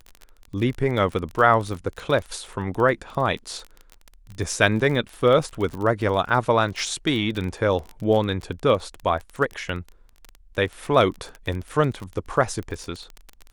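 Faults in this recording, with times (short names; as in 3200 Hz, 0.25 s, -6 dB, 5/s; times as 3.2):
crackle 21/s -28 dBFS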